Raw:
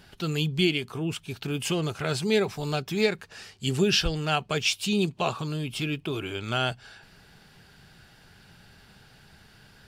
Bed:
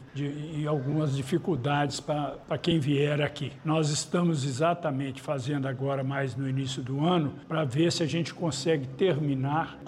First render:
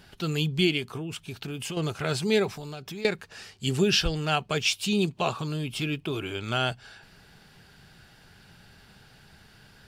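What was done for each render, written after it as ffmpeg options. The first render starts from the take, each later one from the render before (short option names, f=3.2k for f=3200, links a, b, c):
-filter_complex "[0:a]asettb=1/sr,asplit=3[a][b][c];[a]atrim=end=0.974[d];[b]atrim=start=0.97:end=1.77,asetpts=PTS-STARTPTS,afade=t=in:d=0.004:c=qsin,afade=t=out:st=0.796:d=0.004:c=qsin,acompressor=threshold=-31dB:ratio=6:attack=3.2:release=140:knee=1:detection=peak[e];[c]atrim=start=1.766[f];[d][e]acrossfade=d=0.004:c1=hsin:c2=qsin[g];[g][f]acrossfade=d=0.004:c1=qsin:c2=hsin,asettb=1/sr,asplit=3[h][i][j];[h]atrim=end=2.564[k];[i]atrim=start=2.56:end=3.05,asetpts=PTS-STARTPTS,afade=t=in:d=0.004:c=qsin,afade=t=out:st=0.486:d=0.004:c=qsin,acompressor=threshold=-35dB:ratio=6:attack=3.2:release=140:knee=1:detection=peak[l];[j]atrim=start=3.046[m];[k][l]acrossfade=d=0.004:c1=hsin:c2=qsin[n];[n][m]acrossfade=d=0.004:c1=qsin:c2=hsin"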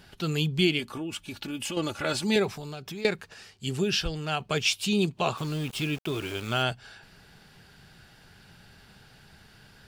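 -filter_complex "[0:a]asettb=1/sr,asplit=3[a][b][c];[a]atrim=end=0.794[d];[b]atrim=start=0.79:end=2.36,asetpts=PTS-STARTPTS,afade=t=in:d=0.004:c=qsin,afade=t=out:st=1.566:d=0.004:c=qsin,aecho=1:1:3.5:0.65,atrim=end_sample=69237[e];[c]atrim=start=2.356[f];[d][e]acrossfade=d=0.004:c1=hsin:c2=qsin[g];[g][f]acrossfade=d=0.004:c1=qsin:c2=hsin,asplit=3[h][i][j];[h]afade=t=out:st=5.36:d=0.02[k];[i]aeval=exprs='val(0)*gte(abs(val(0)),0.0119)':c=same,afade=t=in:st=5.36:d=0.02,afade=t=out:st=6.62:d=0.02[l];[j]afade=t=in:st=6.62:d=0.02[m];[k][l][m]amix=inputs=3:normalize=0,asplit=3[n][o][p];[n]atrim=end=3.342[q];[o]atrim=start=3.338:end=4.402,asetpts=PTS-STARTPTS,volume=-4dB[r];[p]atrim=start=4.398[s];[q][r]acrossfade=d=0.004:c1=hsin:c2=hsin[t];[t][s]acrossfade=d=0.004:c1=hsin:c2=hsin"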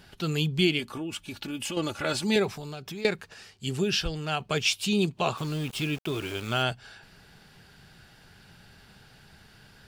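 -af anull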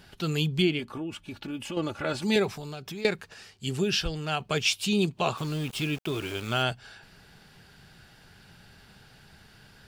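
-filter_complex "[0:a]asettb=1/sr,asplit=3[a][b][c];[a]atrim=end=0.624[d];[b]atrim=start=0.62:end=2.22,asetpts=PTS-STARTPTS,afade=t=in:d=0.004:c=qsin,afade=t=out:st=1.596:d=0.004:c=qsin,highshelf=f=3.2k:g=-10.5[e];[c]atrim=start=2.216[f];[d][e]acrossfade=d=0.004:c1=hsin:c2=qsin[g];[g][f]acrossfade=d=0.004:c1=qsin:c2=hsin"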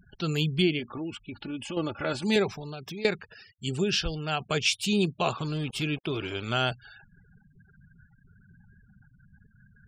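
-af "afftfilt=real='re*gte(hypot(re,im),0.00631)':imag='im*gte(hypot(re,im),0.00631)':win_size=1024:overlap=0.75"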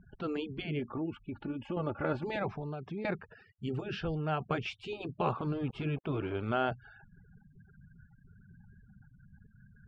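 -af "lowpass=1.3k,afftfilt=real='re*lt(hypot(re,im),0.282)':imag='im*lt(hypot(re,im),0.282)':win_size=1024:overlap=0.75"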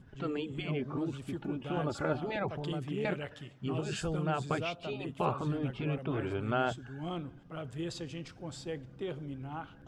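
-filter_complex "[1:a]volume=-13.5dB[a];[0:a][a]amix=inputs=2:normalize=0"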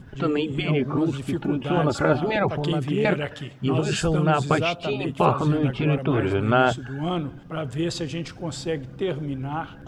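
-af "volume=12dB"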